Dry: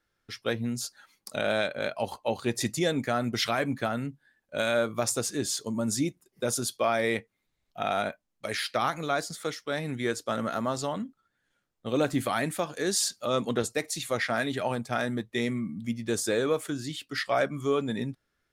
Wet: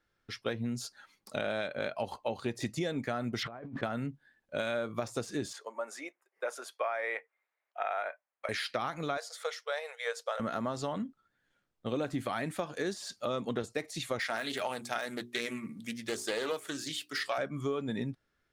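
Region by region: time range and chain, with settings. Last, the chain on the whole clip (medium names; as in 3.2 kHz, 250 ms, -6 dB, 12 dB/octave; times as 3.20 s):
3.43–3.83 s: zero-crossing glitches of -29 dBFS + low-pass 1.1 kHz + compressor with a negative ratio -42 dBFS
5.53–8.49 s: high-pass 540 Hz 24 dB/octave + resonant high shelf 2.8 kHz -10 dB, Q 1.5
9.17–10.40 s: brick-wall FIR high-pass 440 Hz + tape noise reduction on one side only decoder only
14.19–17.38 s: RIAA curve recording + hum notches 60/120/180/240/300/360/420 Hz + loudspeaker Doppler distortion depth 0.17 ms
whole clip: de-esser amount 65%; treble shelf 7.5 kHz -10.5 dB; compression, threshold -30 dBFS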